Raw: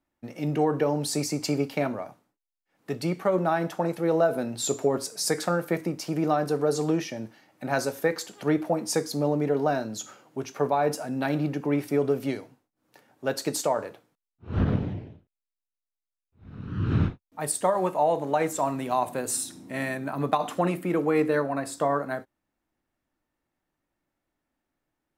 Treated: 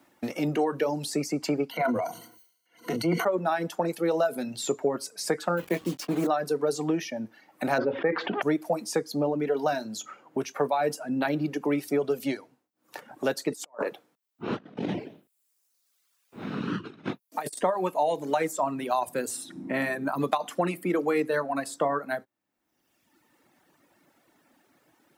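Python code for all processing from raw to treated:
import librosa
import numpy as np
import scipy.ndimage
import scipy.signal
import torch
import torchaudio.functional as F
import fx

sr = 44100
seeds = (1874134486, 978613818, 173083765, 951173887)

y = fx.chain(x, sr, fx.ripple_eq(per_octave=1.9, db=17),
    fx.transient(attack_db=-7, sustain_db=9),
    fx.sustainer(db_per_s=89.0), at=(1.71, 3.25))
y = fx.chain(y, sr, fx.delta_hold(step_db=-34.0),
    fx.doubler(ms=23.0, db=-8.0), at=(5.57, 6.27))
y = fx.chain(y, sr, fx.bessel_lowpass(hz=1800.0, order=6),
    fx.env_flatten(amount_pct=70), at=(7.78, 8.42))
y = fx.chain(y, sr, fx.highpass(hz=180.0, slope=12),
    fx.over_compress(threshold_db=-36.0, ratio=-0.5), at=(13.52, 17.59))
y = fx.dereverb_blind(y, sr, rt60_s=1.1)
y = scipy.signal.sosfilt(scipy.signal.butter(2, 170.0, 'highpass', fs=sr, output='sos'), y)
y = fx.band_squash(y, sr, depth_pct=70)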